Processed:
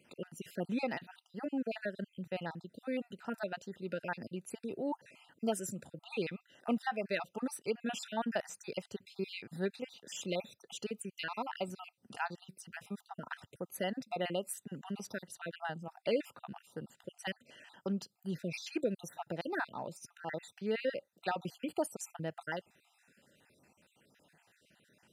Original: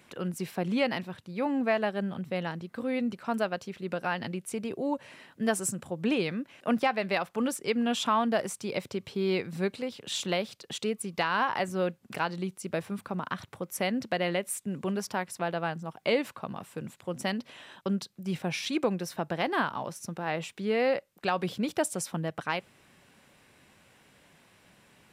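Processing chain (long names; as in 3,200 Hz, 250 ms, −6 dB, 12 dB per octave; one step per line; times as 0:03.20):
time-frequency cells dropped at random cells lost 45%
notch comb filter 1,100 Hz
level −5 dB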